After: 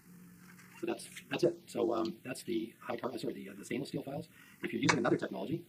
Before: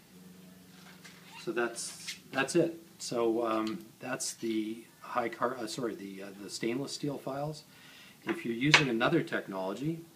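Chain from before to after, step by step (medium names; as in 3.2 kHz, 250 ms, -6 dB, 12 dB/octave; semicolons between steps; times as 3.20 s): granular stretch 0.56×, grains 40 ms; touch-sensitive phaser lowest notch 580 Hz, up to 3.1 kHz, full sweep at -25.5 dBFS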